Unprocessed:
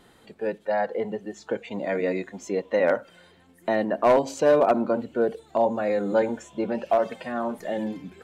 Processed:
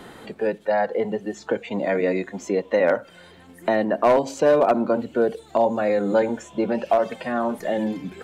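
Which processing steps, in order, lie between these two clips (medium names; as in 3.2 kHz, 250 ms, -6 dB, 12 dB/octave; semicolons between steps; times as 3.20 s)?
three bands compressed up and down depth 40%; trim +3 dB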